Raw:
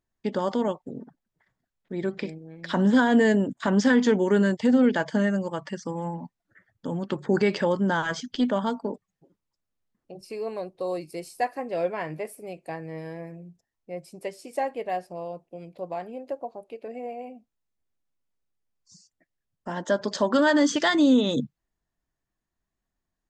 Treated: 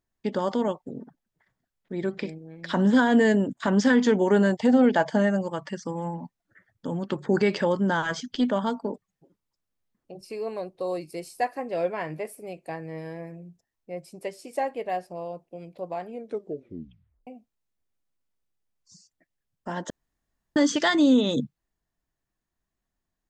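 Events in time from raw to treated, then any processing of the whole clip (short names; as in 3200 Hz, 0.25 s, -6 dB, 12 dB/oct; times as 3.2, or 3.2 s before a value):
4.21–5.41 bell 750 Hz +8.5 dB 0.65 oct
16.1 tape stop 1.17 s
19.9–20.56 room tone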